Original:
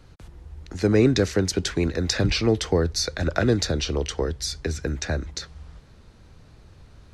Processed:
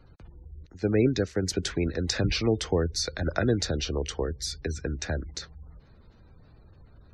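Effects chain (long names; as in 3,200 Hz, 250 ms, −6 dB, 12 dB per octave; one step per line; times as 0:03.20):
gate on every frequency bin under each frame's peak −30 dB strong
0:00.66–0:01.43: expander for the loud parts 1.5 to 1, over −39 dBFS
level −4 dB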